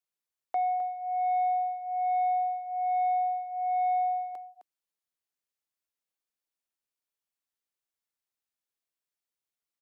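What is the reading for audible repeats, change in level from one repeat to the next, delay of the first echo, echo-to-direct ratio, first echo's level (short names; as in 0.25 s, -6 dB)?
1, no steady repeat, 0.26 s, -11.0 dB, -11.0 dB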